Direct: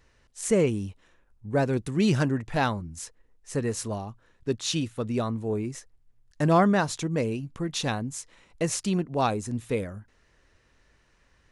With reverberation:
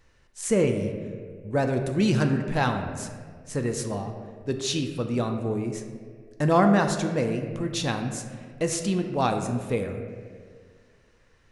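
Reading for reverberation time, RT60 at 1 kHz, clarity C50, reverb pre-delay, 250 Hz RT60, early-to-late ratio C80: 1.9 s, 1.6 s, 6.5 dB, 4 ms, 2.0 s, 8.0 dB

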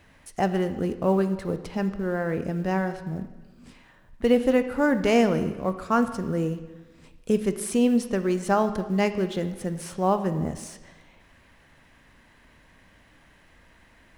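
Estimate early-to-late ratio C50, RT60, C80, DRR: 11.5 dB, 1.2 s, 13.0 dB, 9.5 dB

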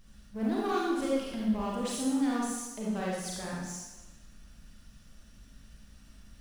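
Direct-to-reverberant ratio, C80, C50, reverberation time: -5.5 dB, 1.5 dB, -2.0 dB, 1.1 s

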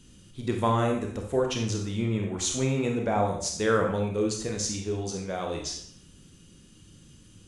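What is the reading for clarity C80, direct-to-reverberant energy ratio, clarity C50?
8.0 dB, 1.5 dB, 4.5 dB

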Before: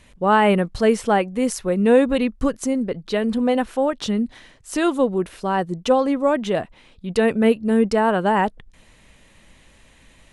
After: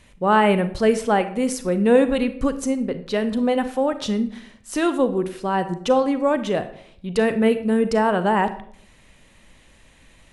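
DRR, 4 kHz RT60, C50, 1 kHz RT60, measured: 11.0 dB, 0.40 s, 12.5 dB, 0.55 s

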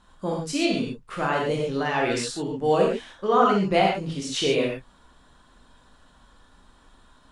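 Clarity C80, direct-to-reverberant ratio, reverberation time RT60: 4.5 dB, -2.0 dB, no single decay rate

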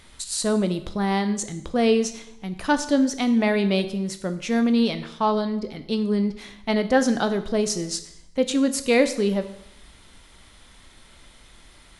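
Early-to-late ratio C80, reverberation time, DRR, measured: 15.0 dB, 0.75 s, 9.5 dB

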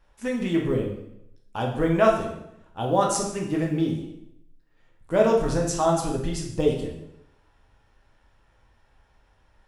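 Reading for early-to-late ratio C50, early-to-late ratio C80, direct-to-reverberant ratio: 5.0 dB, 8.0 dB, -1.0 dB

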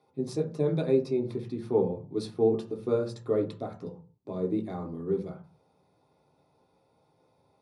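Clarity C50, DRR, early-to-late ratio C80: 10.5 dB, -1.0 dB, 16.0 dB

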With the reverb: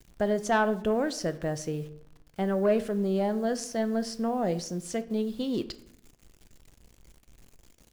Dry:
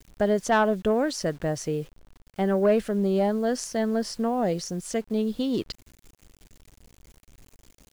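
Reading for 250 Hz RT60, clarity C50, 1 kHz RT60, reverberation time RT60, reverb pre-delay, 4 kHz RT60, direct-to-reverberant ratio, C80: 0.90 s, 16.0 dB, 0.70 s, 0.70 s, 6 ms, 0.50 s, 11.0 dB, 19.0 dB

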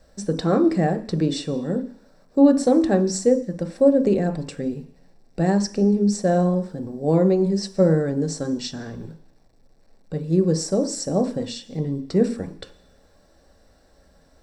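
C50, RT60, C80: 14.5 dB, 0.50 s, 17.0 dB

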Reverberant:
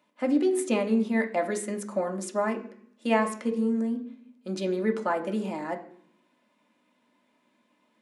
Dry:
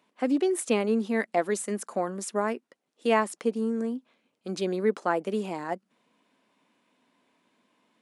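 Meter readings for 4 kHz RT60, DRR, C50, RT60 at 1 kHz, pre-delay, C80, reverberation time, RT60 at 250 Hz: 0.80 s, 1.5 dB, 12.0 dB, 0.60 s, 3 ms, 15.5 dB, 0.60 s, 0.95 s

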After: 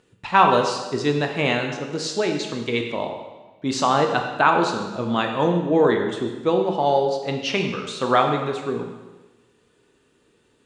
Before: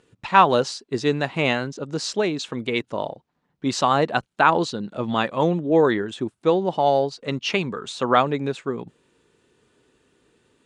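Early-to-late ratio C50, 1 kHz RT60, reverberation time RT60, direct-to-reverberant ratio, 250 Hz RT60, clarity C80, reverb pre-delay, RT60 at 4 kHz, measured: 5.5 dB, 1.1 s, 1.2 s, 3.0 dB, 1.2 s, 7.0 dB, 7 ms, 1.1 s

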